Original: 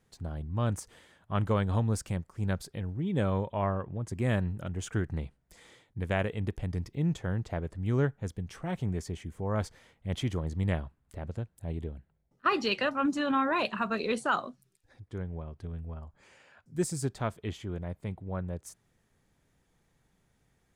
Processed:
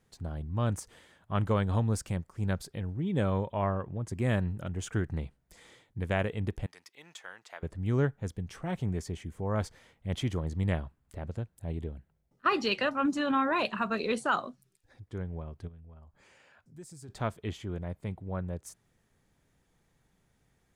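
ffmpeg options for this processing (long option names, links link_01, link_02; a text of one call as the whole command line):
ffmpeg -i in.wav -filter_complex "[0:a]asettb=1/sr,asplit=3[link_01][link_02][link_03];[link_01]atrim=end=6.664[link_04];[link_02]atrim=start=6.66:end=7.63,asetpts=PTS-STARTPTS,afade=type=in:duration=0.004:curve=qsin,afade=type=out:start_time=0.966:duration=0.004:curve=qsin,highpass=1200[link_05];[link_03]atrim=start=7.626[link_06];[link_04][link_05]acrossfade=duration=0.004:curve1=hsin:curve2=qsin[link_07];[link_07][link_06]acrossfade=duration=0.004:curve1=qsin:curve2=hsin,asplit=3[link_08][link_09][link_10];[link_08]afade=type=out:start_time=15.67:duration=0.02[link_11];[link_09]acompressor=threshold=-58dB:ratio=2:attack=3.2:release=140:knee=1:detection=peak,afade=type=in:start_time=15.67:duration=0.02,afade=type=out:start_time=17.08:duration=0.02[link_12];[link_10]afade=type=in:start_time=17.08:duration=0.02[link_13];[link_11][link_12][link_13]amix=inputs=3:normalize=0" out.wav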